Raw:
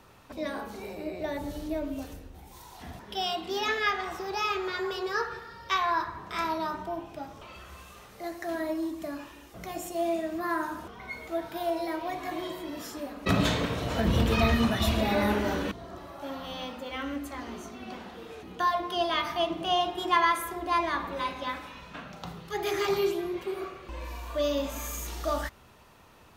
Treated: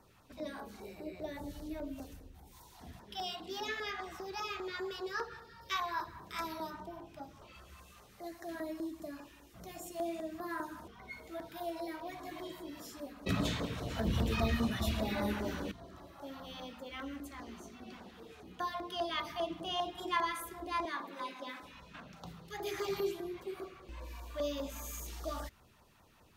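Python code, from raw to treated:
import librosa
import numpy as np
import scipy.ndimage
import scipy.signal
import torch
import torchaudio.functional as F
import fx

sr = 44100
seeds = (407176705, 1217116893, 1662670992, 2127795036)

y = fx.high_shelf(x, sr, hz=8800.0, db=10.5, at=(5.61, 6.7))
y = fx.steep_highpass(y, sr, hz=200.0, slope=48, at=(20.85, 21.63))
y = fx.filter_lfo_notch(y, sr, shape='saw_down', hz=5.0, low_hz=290.0, high_hz=3500.0, q=0.82)
y = F.gain(torch.from_numpy(y), -7.0).numpy()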